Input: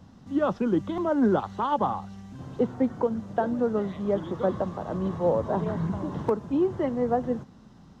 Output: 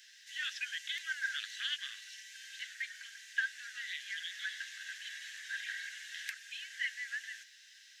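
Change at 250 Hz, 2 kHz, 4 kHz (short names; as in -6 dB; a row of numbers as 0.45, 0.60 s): under -40 dB, +8.0 dB, n/a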